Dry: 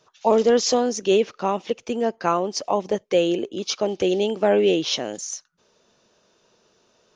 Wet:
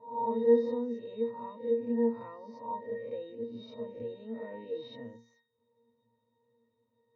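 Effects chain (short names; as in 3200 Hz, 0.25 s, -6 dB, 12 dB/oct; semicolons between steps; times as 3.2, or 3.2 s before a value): spectral swells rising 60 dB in 0.63 s; in parallel at -1.5 dB: limiter -15 dBFS, peak gain reduction 10.5 dB; on the sum: LPF 4200 Hz 12 dB/oct; octave resonator A#, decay 0.34 s; dynamic EQ 1300 Hz, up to +3 dB, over -43 dBFS, Q 0.86; gain -4 dB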